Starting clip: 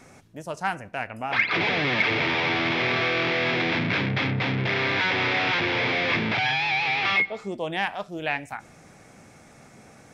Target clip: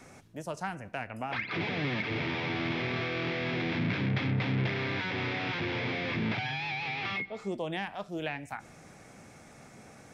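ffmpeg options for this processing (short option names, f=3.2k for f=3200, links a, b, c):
-filter_complex "[0:a]acrossover=split=320[a][b];[b]acompressor=threshold=-31dB:ratio=6[c];[a][c]amix=inputs=2:normalize=0,volume=-2dB"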